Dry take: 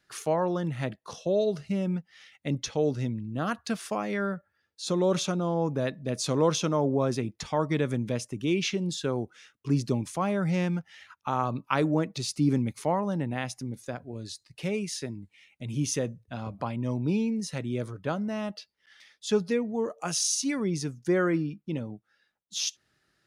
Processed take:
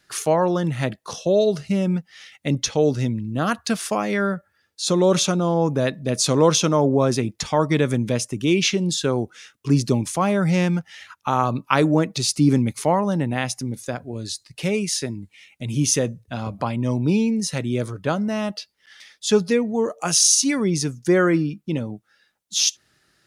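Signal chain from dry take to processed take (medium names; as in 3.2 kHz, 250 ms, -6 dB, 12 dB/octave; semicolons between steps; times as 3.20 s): peaking EQ 10 kHz +5 dB 2.2 oct; trim +7.5 dB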